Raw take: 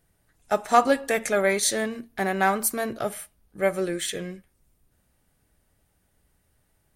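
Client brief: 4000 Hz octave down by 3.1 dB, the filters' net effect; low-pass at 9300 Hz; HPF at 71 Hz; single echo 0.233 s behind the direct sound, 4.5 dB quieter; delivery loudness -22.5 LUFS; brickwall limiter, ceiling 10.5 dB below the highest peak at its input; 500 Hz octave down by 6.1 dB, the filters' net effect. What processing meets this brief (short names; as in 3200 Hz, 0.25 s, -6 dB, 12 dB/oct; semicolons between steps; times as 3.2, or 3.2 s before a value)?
HPF 71 Hz; LPF 9300 Hz; bell 500 Hz -8 dB; bell 4000 Hz -3.5 dB; limiter -18 dBFS; echo 0.233 s -4.5 dB; gain +7 dB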